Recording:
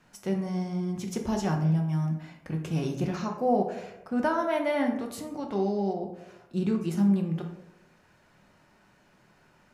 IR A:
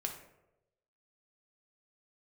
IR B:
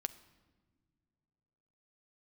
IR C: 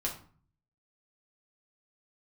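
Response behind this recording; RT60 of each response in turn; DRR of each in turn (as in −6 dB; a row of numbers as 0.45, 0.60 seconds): A; 0.95 s, non-exponential decay, 0.45 s; 2.0, 12.0, −3.0 decibels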